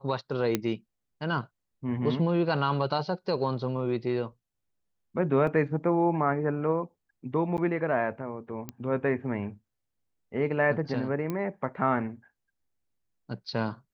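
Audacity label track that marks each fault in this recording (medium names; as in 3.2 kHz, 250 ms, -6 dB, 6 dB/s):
0.550000	0.550000	pop -11 dBFS
5.470000	5.470000	dropout 2.7 ms
7.570000	7.580000	dropout 9.2 ms
8.690000	8.690000	pop -20 dBFS
11.300000	11.300000	pop -19 dBFS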